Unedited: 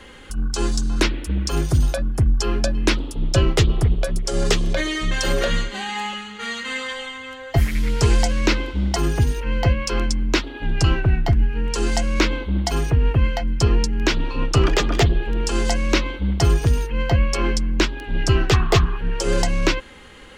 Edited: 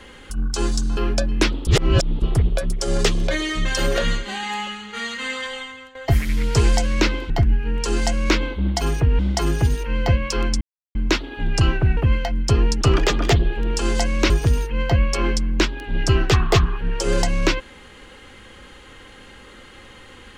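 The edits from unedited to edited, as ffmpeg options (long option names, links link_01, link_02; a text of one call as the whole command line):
ffmpeg -i in.wav -filter_complex "[0:a]asplit=11[link_01][link_02][link_03][link_04][link_05][link_06][link_07][link_08][link_09][link_10][link_11];[link_01]atrim=end=0.972[link_12];[link_02]atrim=start=2.428:end=3.132[link_13];[link_03]atrim=start=3.128:end=3.682,asetpts=PTS-STARTPTS,areverse[link_14];[link_04]atrim=start=3.678:end=7.41,asetpts=PTS-STARTPTS,afade=type=out:start_time=3.392:duration=0.34:silence=0.211349[link_15];[link_05]atrim=start=7.41:end=8.762,asetpts=PTS-STARTPTS,afade=type=in:duration=0.004:curve=hsin:silence=0.211349[link_16];[link_06]atrim=start=11.198:end=13.092[link_17];[link_07]atrim=start=8.758:end=10.18,asetpts=PTS-STARTPTS,afade=type=out:start_time=1.418:duration=0.004:curve=hsin,apad=pad_dur=0.34[link_18];[link_08]atrim=start=10.18:end=11.202,asetpts=PTS-STARTPTS,afade=type=in:duration=0.004:curve=hsin[link_19];[link_09]atrim=start=13.088:end=13.932[link_20];[link_10]atrim=start=14.508:end=16.002[link_21];[link_11]atrim=start=16.498[link_22];[link_12][link_13]acrossfade=duration=0.004:curve1=hsin:curve2=hsin[link_23];[link_23][link_14]acrossfade=duration=0.004:curve1=hsin:curve2=hsin[link_24];[link_15][link_16]concat=n=2:v=0:a=1[link_25];[link_24][link_25]acrossfade=duration=0.004:curve1=hsin:curve2=hsin[link_26];[link_26][link_17]acrossfade=duration=0.004:curve1=hsin:curve2=hsin[link_27];[link_18][link_19]concat=n=2:v=0:a=1[link_28];[link_27][link_28]acrossfade=duration=0.004:curve1=hsin:curve2=hsin[link_29];[link_29][link_20]acrossfade=duration=0.004:curve1=hsin:curve2=hsin[link_30];[link_30][link_21]acrossfade=duration=0.004:curve1=hsin:curve2=hsin[link_31];[link_31][link_22]acrossfade=duration=0.004:curve1=hsin:curve2=hsin" out.wav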